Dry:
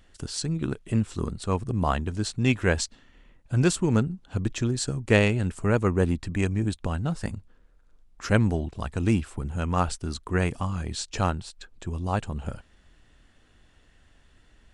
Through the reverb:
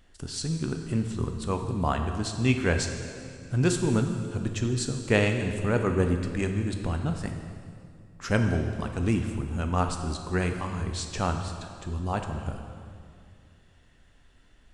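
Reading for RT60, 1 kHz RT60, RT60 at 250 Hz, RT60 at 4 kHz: 2.3 s, 2.2 s, 2.7 s, 2.0 s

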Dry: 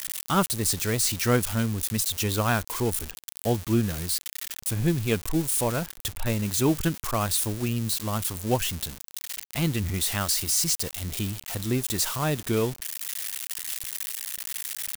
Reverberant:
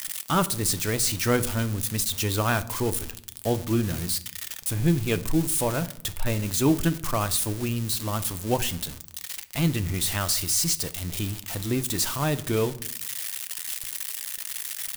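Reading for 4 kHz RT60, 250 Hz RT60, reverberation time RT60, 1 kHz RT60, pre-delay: 0.40 s, 0.90 s, 0.65 s, 0.60 s, 3 ms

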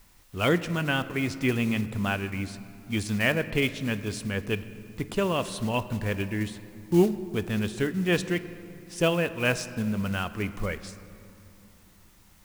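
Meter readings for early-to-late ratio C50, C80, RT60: 13.5 dB, 14.5 dB, 2.9 s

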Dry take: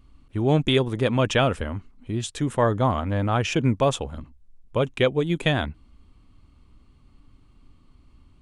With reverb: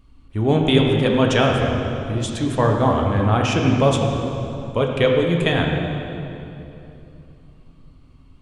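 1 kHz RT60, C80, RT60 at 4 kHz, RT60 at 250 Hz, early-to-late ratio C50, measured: 2.7 s, 3.0 dB, 2.2 s, 3.6 s, 2.0 dB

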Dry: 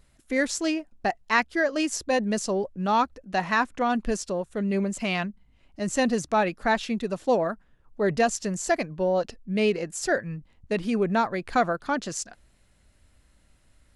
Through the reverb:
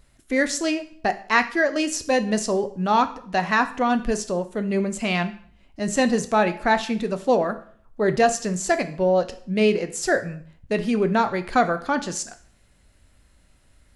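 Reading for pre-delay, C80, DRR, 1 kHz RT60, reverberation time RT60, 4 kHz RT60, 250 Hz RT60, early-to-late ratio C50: 5 ms, 18.5 dB, 9.0 dB, 0.55 s, 0.55 s, 0.50 s, 0.55 s, 14.5 dB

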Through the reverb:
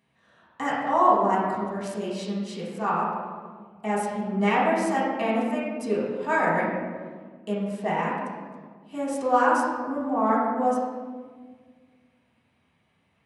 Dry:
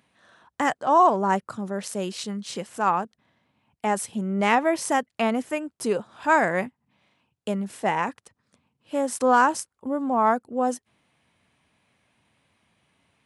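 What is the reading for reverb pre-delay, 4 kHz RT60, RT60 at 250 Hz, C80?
3 ms, 0.95 s, 2.4 s, 2.0 dB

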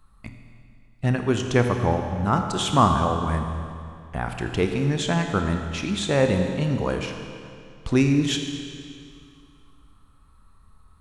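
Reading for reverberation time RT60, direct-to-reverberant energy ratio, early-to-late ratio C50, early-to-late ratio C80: 2.4 s, 4.5 dB, 5.5 dB, 6.0 dB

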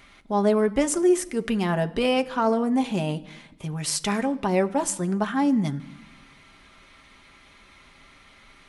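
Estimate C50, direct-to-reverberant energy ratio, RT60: 19.5 dB, 7.0 dB, non-exponential decay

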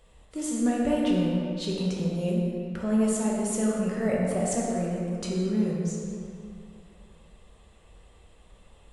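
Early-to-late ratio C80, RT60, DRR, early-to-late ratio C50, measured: 0.5 dB, 2.6 s, −4.5 dB, −1.0 dB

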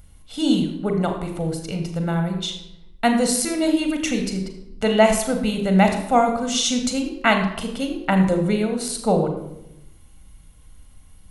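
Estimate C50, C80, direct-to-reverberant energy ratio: 6.5 dB, 9.0 dB, 4.5 dB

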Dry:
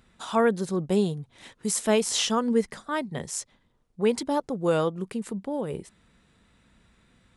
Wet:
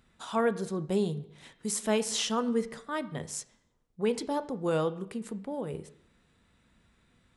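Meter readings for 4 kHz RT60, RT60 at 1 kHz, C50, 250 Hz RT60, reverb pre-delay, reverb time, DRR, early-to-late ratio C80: 0.65 s, 0.65 s, 16.0 dB, 0.70 s, 7 ms, 0.65 s, 11.5 dB, 18.5 dB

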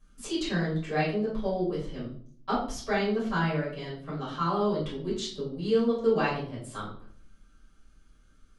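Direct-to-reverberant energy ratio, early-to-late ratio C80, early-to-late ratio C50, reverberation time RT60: −10.0 dB, 8.5 dB, 4.5 dB, 0.55 s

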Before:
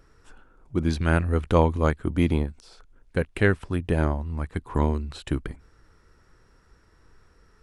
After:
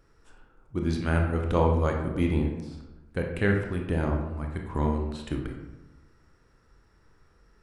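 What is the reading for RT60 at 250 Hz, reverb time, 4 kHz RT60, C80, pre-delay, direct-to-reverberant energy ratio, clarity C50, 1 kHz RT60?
1.2 s, 1.1 s, 0.60 s, 7.0 dB, 22 ms, 1.5 dB, 4.5 dB, 1.0 s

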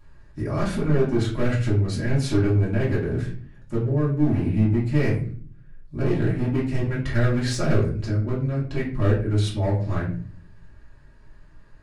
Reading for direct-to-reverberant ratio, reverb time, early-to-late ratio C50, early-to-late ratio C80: −8.5 dB, 0.45 s, 7.0 dB, 12.0 dB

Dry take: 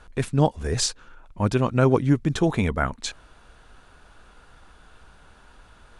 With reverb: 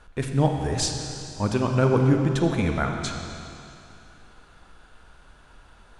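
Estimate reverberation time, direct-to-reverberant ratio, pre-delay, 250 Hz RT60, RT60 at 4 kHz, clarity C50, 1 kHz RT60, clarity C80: 2.6 s, 3.0 dB, 30 ms, 2.6 s, 2.6 s, 4.0 dB, 2.6 s, 4.5 dB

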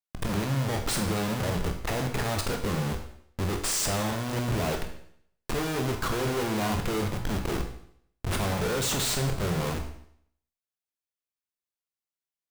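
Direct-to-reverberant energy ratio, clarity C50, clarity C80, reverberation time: 3.5 dB, 7.5 dB, 11.0 dB, 0.65 s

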